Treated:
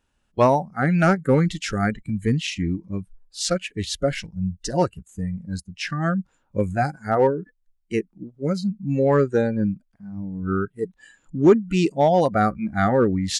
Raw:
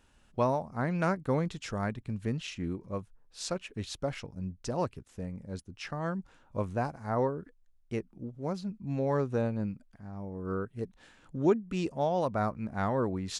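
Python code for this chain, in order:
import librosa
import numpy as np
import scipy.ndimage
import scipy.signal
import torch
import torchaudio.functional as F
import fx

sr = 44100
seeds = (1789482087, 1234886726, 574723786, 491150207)

p1 = fx.noise_reduce_blind(x, sr, reduce_db=19)
p2 = np.clip(p1, -10.0 ** (-23.5 / 20.0), 10.0 ** (-23.5 / 20.0))
p3 = p1 + F.gain(torch.from_numpy(p2), -3.5).numpy()
y = F.gain(torch.from_numpy(p3), 8.0).numpy()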